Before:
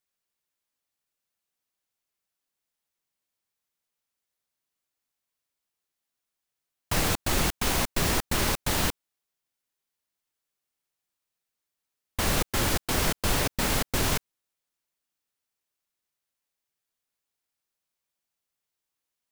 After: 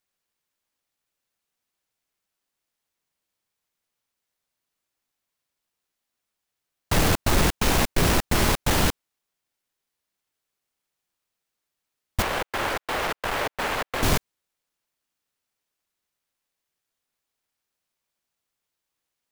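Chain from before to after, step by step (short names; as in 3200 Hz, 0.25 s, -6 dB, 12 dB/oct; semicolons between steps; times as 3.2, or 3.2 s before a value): half-waves squared off; 12.22–14.03 three-band isolator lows -17 dB, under 440 Hz, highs -12 dB, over 3200 Hz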